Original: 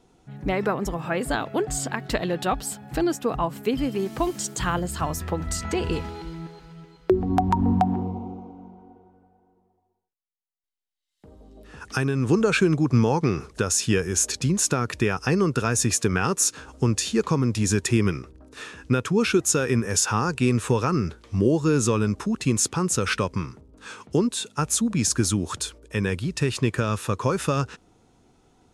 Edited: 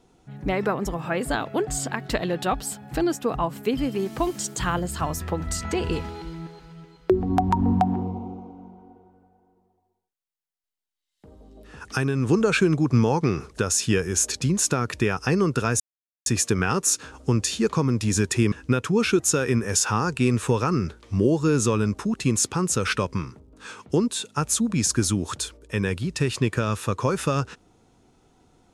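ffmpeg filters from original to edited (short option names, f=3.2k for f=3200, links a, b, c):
-filter_complex "[0:a]asplit=3[a][b][c];[a]atrim=end=15.8,asetpts=PTS-STARTPTS,afade=t=out:st=15.796:d=0.004:c=hsin,apad=pad_dur=0.46[d];[b]atrim=start=15.8:end=18.062,asetpts=PTS-STARTPTS,afade=t=in:d=0.004:c=hsin[e];[c]atrim=start=18.728[f];[d][e]concat=n=2:v=0:a=1[g];[g][f]acrossfade=d=0.004:c1=hsin:c2=hsin"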